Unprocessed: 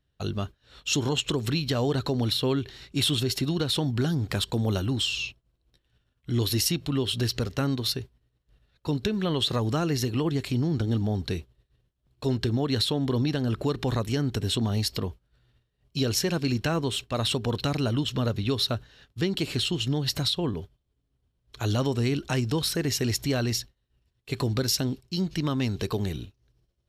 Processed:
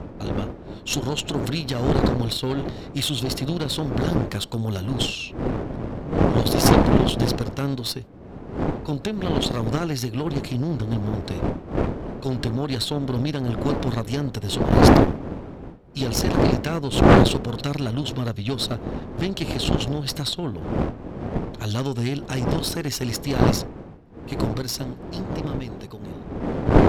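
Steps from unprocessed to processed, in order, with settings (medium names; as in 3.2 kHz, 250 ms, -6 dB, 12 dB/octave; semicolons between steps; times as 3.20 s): fade out at the end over 3.04 s; wind noise 350 Hz -24 dBFS; Chebyshev shaper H 5 -12 dB, 8 -7 dB, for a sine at 3.5 dBFS; trim -7.5 dB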